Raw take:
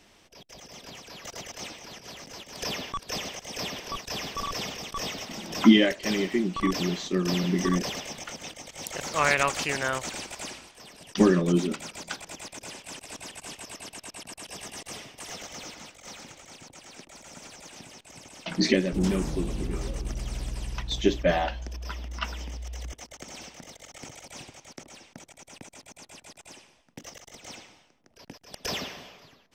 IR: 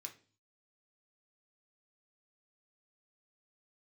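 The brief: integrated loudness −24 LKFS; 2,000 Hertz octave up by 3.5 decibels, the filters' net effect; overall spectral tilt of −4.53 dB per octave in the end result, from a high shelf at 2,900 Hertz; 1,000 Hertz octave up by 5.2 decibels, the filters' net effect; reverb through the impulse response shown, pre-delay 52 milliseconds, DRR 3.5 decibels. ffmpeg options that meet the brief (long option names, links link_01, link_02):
-filter_complex "[0:a]equalizer=frequency=1000:width_type=o:gain=6,equalizer=frequency=2000:width_type=o:gain=4,highshelf=frequency=2900:gain=-4,asplit=2[link_01][link_02];[1:a]atrim=start_sample=2205,adelay=52[link_03];[link_02][link_03]afir=irnorm=-1:irlink=0,volume=1.5dB[link_04];[link_01][link_04]amix=inputs=2:normalize=0,volume=2dB"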